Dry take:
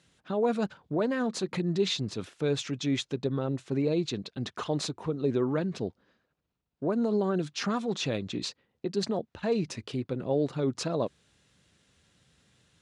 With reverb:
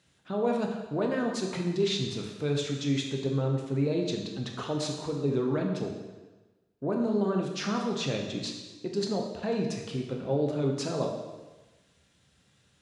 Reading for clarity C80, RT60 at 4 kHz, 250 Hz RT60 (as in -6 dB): 6.5 dB, 1.1 s, 1.2 s